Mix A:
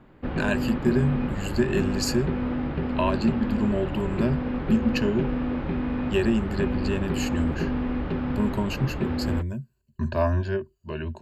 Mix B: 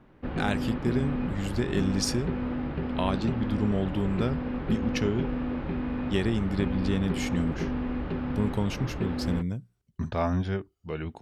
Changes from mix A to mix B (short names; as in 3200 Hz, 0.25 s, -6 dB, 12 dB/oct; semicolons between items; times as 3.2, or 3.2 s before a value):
speech: remove ripple EQ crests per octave 1.4, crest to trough 16 dB; background -3.5 dB